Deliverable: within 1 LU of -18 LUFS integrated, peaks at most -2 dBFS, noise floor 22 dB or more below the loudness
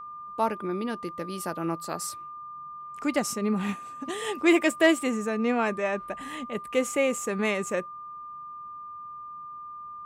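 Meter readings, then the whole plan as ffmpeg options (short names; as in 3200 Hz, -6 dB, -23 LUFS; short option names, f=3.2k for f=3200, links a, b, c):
steady tone 1200 Hz; tone level -38 dBFS; loudness -28.0 LUFS; peak -9.5 dBFS; loudness target -18.0 LUFS
-> -af "bandreject=f=1.2k:w=30"
-af "volume=10dB,alimiter=limit=-2dB:level=0:latency=1"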